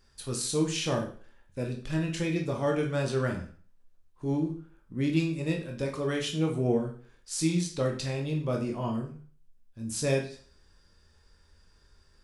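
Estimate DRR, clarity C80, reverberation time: 1.0 dB, 13.0 dB, 0.45 s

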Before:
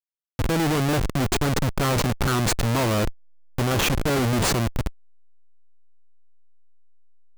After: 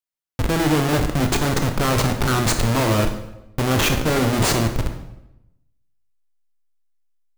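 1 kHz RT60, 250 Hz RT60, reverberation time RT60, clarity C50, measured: 0.85 s, 1.0 s, 0.85 s, 8.5 dB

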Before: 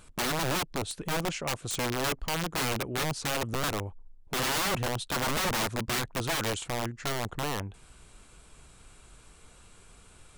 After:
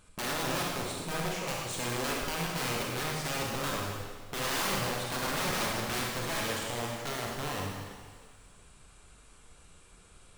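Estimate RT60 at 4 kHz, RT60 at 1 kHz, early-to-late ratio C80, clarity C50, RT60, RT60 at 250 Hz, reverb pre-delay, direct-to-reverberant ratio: 1.6 s, 1.7 s, 1.5 dB, -1.0 dB, 1.6 s, 1.6 s, 30 ms, -3.0 dB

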